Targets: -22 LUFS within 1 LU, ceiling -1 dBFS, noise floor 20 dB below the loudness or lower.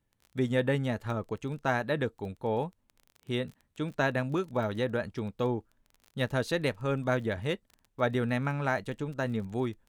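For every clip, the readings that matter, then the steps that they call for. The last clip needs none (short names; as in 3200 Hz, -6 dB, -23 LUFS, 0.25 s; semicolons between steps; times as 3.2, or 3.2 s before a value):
ticks 22/s; loudness -32.0 LUFS; peak -14.0 dBFS; loudness target -22.0 LUFS
-> de-click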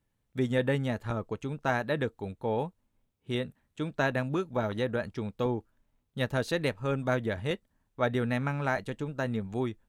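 ticks 0/s; loudness -32.0 LUFS; peak -14.0 dBFS; loudness target -22.0 LUFS
-> gain +10 dB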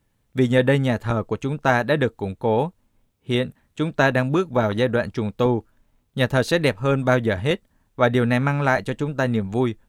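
loudness -22.0 LUFS; peak -4.0 dBFS; noise floor -68 dBFS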